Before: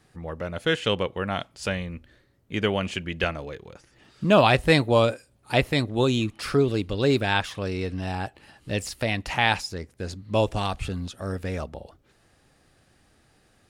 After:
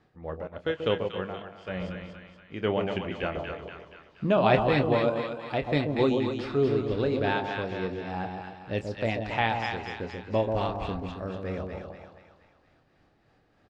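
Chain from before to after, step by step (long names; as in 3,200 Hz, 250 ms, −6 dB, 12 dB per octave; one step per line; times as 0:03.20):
parametric band 530 Hz +5 dB 2.7 octaves
amplitude tremolo 3.3 Hz, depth 56%
high-frequency loss of the air 160 metres
double-tracking delay 27 ms −11 dB
echo with a time of its own for lows and highs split 960 Hz, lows 135 ms, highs 237 ms, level −4.5 dB
0:00.47–0:01.68: expander for the loud parts 1.5 to 1, over −36 dBFS
level −5 dB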